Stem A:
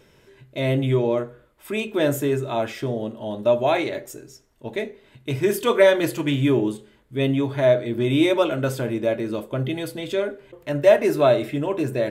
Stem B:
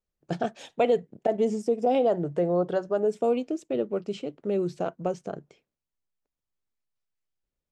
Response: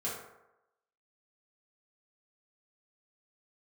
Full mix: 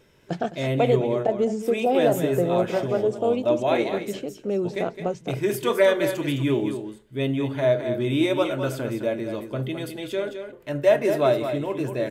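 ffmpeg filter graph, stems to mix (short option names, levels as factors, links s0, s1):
-filter_complex "[0:a]volume=0.668,asplit=2[s0][s1];[s1]volume=0.376[s2];[1:a]volume=1.19,asplit=2[s3][s4];[s4]volume=0.188[s5];[s2][s5]amix=inputs=2:normalize=0,aecho=0:1:212:1[s6];[s0][s3][s6]amix=inputs=3:normalize=0"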